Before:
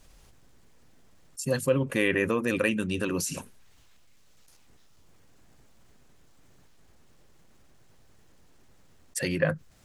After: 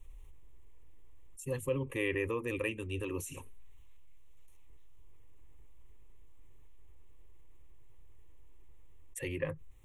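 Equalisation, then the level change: bass shelf 71 Hz +10.5 dB; bass shelf 170 Hz +6.5 dB; static phaser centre 990 Hz, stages 8; -7.5 dB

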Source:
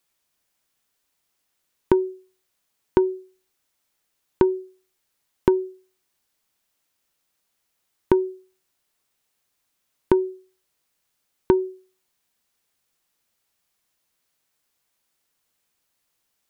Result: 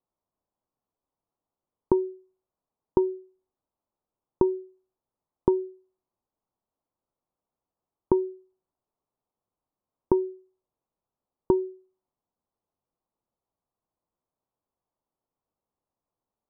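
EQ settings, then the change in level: steep low-pass 1.1 kHz 36 dB/octave; -4.0 dB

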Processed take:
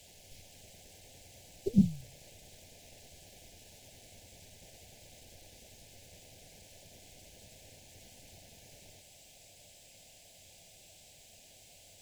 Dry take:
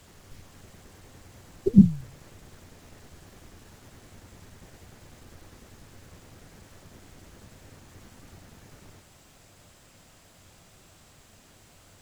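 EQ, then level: Butterworth band-stop 1.2 kHz, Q 0.71; resonant low shelf 490 Hz -10 dB, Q 1.5; band-stop 1.9 kHz, Q 13; +1.5 dB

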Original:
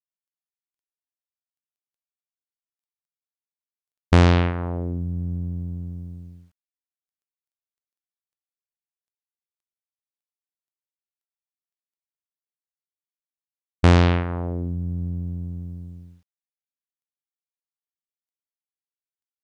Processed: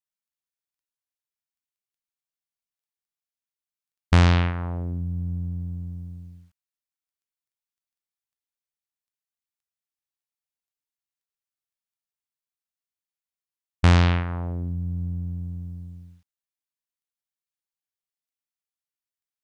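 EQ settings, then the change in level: peaking EQ 400 Hz -8.5 dB 1.6 oct; 0.0 dB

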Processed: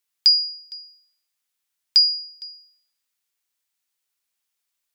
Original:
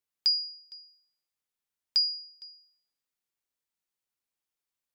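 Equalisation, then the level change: tilt shelf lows -6 dB; +4.5 dB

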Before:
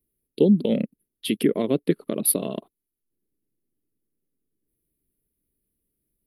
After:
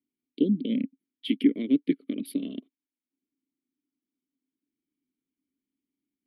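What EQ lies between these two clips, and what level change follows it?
vowel filter i; peaking EQ 87 Hz -2.5 dB 2.8 oct; +6.5 dB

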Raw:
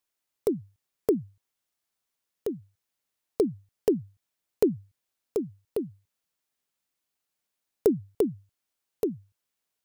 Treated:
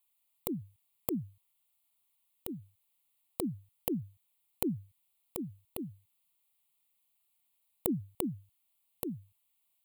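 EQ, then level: treble shelf 4 kHz +10.5 dB; static phaser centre 1.6 kHz, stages 6; 0.0 dB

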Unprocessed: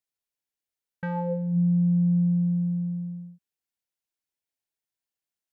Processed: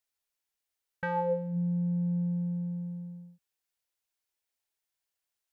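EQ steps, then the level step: peaking EQ 190 Hz -12 dB 1.3 oct; +3.5 dB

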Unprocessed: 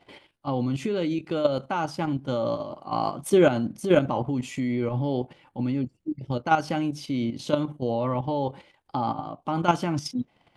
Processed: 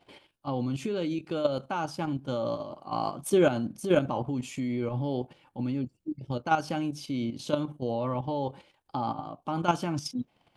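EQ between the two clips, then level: treble shelf 6.2 kHz +4.5 dB; band-stop 2 kHz, Q 11; -4.0 dB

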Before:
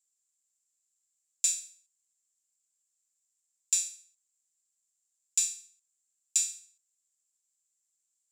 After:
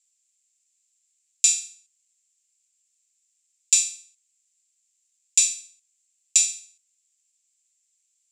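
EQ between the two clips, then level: resonant high-pass 2.4 kHz, resonance Q 2.3; low-pass 7.3 kHz 12 dB/octave; treble shelf 4.4 kHz +10.5 dB; +3.0 dB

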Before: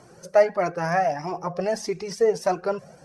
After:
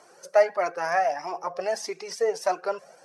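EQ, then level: high-pass 530 Hz 12 dB/octave; 0.0 dB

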